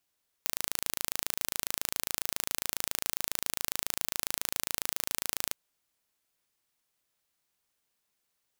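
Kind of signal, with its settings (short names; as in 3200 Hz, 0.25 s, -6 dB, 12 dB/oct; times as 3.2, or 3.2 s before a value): pulse train 27.3/s, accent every 0, -3 dBFS 5.08 s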